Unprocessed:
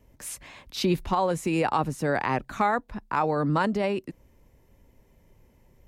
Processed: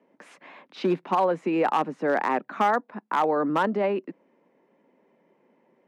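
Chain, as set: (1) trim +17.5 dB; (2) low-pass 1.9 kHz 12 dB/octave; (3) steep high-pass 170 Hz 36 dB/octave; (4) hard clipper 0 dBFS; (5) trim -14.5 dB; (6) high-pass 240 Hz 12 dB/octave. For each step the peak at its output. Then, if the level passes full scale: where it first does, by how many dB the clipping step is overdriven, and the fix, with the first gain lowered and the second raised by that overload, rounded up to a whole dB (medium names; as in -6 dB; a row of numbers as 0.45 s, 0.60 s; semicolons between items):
+5.5 dBFS, +5.5 dBFS, +5.5 dBFS, 0.0 dBFS, -14.5 dBFS, -10.5 dBFS; step 1, 5.5 dB; step 1 +11.5 dB, step 5 -8.5 dB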